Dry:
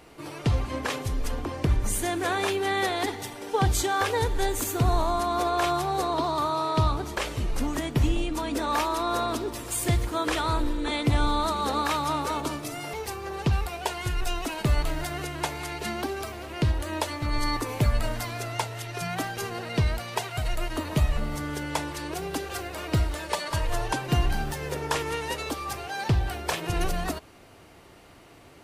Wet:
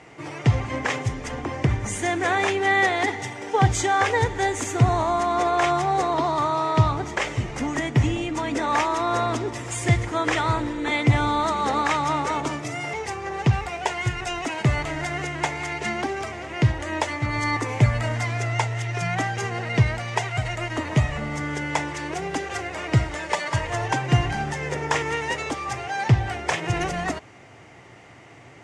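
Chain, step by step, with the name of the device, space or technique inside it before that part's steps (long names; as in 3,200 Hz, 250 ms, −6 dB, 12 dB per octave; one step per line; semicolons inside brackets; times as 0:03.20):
car door speaker (loudspeaker in its box 88–7,800 Hz, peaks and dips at 120 Hz +10 dB, 790 Hz +4 dB, 2,000 Hz +9 dB, 4,200 Hz −7 dB, 6,700 Hz +3 dB)
level +2.5 dB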